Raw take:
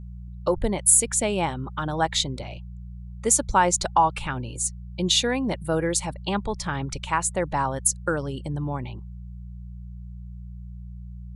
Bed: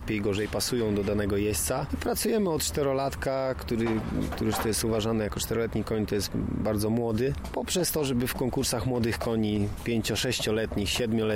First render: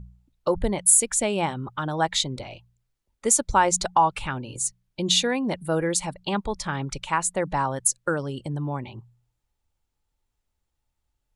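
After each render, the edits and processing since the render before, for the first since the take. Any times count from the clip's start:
hum removal 60 Hz, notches 3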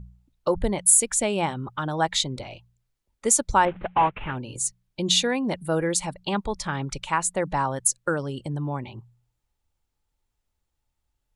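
0:03.65–0:04.36: variable-slope delta modulation 16 kbit/s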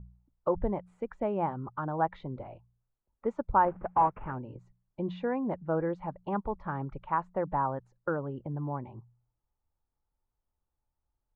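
transistor ladder low-pass 1,500 Hz, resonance 25%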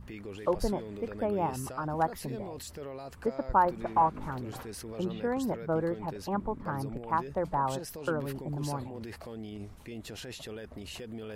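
mix in bed −15 dB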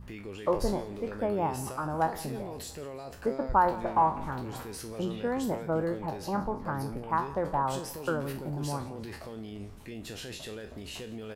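peak hold with a decay on every bin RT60 0.34 s
repeating echo 172 ms, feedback 54%, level −19.5 dB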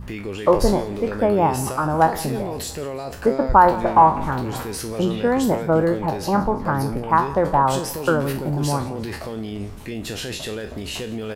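level +11.5 dB
brickwall limiter −1 dBFS, peak gain reduction 1.5 dB

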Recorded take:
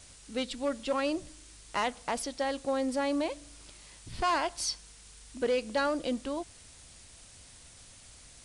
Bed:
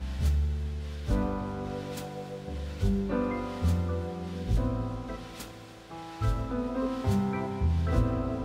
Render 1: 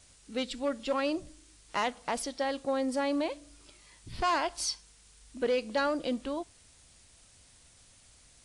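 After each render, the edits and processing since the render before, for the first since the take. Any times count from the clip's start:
noise reduction from a noise print 6 dB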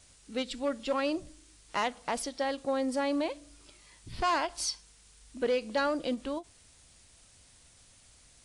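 every ending faded ahead of time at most 350 dB per second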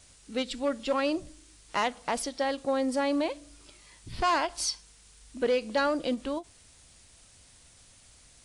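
level +2.5 dB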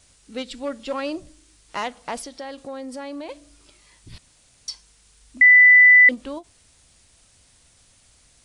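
0:02.20–0:03.29: downward compressor 2.5 to 1, threshold −33 dBFS
0:04.18–0:04.68: fill with room tone
0:05.41–0:06.09: beep over 1,990 Hz −7.5 dBFS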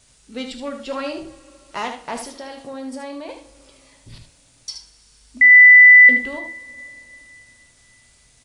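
on a send: single-tap delay 75 ms −8 dB
on the sum: coupled-rooms reverb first 0.36 s, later 3.4 s, from −21 dB, DRR 5.5 dB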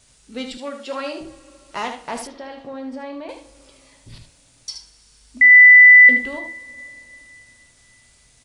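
0:00.57–0:01.21: Bessel high-pass filter 300 Hz
0:02.27–0:03.29: low-pass filter 3,200 Hz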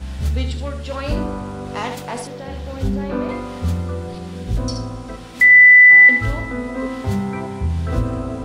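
mix in bed +5.5 dB

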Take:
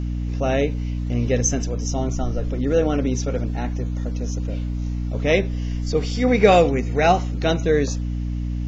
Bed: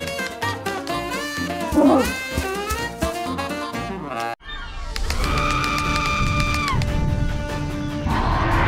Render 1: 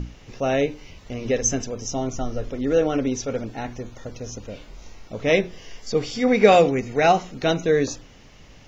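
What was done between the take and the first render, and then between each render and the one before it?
mains-hum notches 60/120/180/240/300/360 Hz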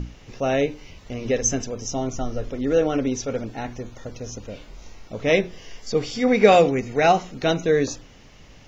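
no processing that can be heard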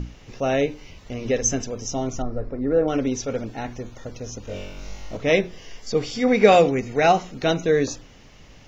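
0:02.22–0:02.88: moving average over 14 samples
0:04.45–0:05.17: flutter between parallel walls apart 3.6 metres, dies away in 0.95 s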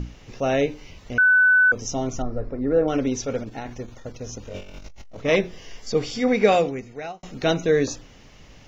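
0:01.18–0:01.72: beep over 1,500 Hz −12.5 dBFS
0:03.38–0:05.36: saturating transformer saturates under 440 Hz
0:06.12–0:07.23: fade out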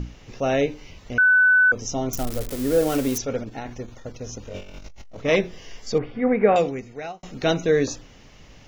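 0:02.13–0:03.18: spike at every zero crossing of −19.5 dBFS
0:05.98–0:06.56: low-pass filter 2,000 Hz 24 dB per octave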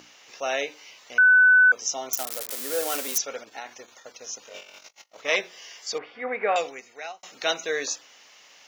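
high-pass filter 800 Hz 12 dB per octave
high-shelf EQ 4,000 Hz +6 dB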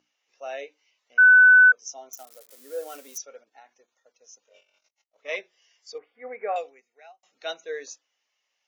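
every bin expanded away from the loudest bin 1.5 to 1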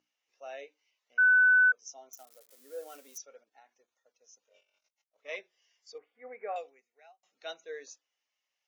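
level −8.5 dB

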